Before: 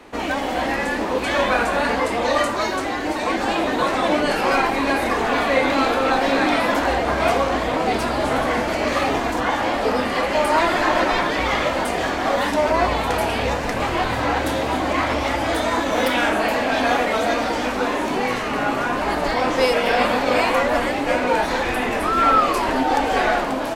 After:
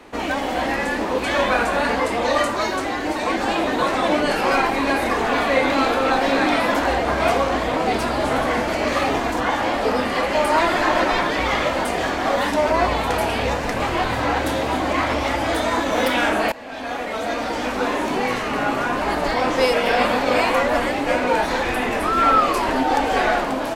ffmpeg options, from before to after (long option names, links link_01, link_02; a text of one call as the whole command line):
ffmpeg -i in.wav -filter_complex "[0:a]asplit=2[link_01][link_02];[link_01]atrim=end=16.52,asetpts=PTS-STARTPTS,afade=type=out:start_time=16.516:duration=0.004:curve=hsin:silence=0.1[link_03];[link_02]atrim=start=16.52,asetpts=PTS-STARTPTS,afade=type=in:duration=1.36:silence=0.1[link_04];[link_03][link_04]concat=n=2:v=0:a=1" out.wav